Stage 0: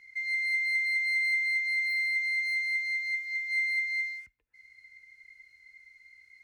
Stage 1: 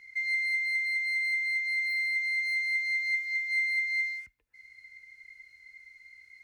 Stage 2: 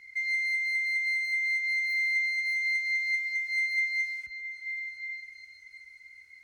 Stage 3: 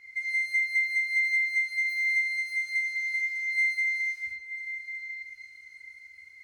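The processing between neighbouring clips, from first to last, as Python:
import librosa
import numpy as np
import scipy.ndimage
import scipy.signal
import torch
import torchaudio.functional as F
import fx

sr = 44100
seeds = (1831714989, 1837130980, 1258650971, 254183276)

y1 = fx.rider(x, sr, range_db=10, speed_s=0.5)
y2 = fx.cheby_harmonics(y1, sr, harmonics=(5,), levels_db=(-33,), full_scale_db=-21.0)
y2 = fx.echo_stepped(y2, sr, ms=365, hz=820.0, octaves=0.7, feedback_pct=70, wet_db=-5.0)
y3 = fx.rev_gated(y2, sr, seeds[0], gate_ms=130, shape='flat', drr_db=-2.5)
y3 = y3 * 10.0 ** (-3.0 / 20.0)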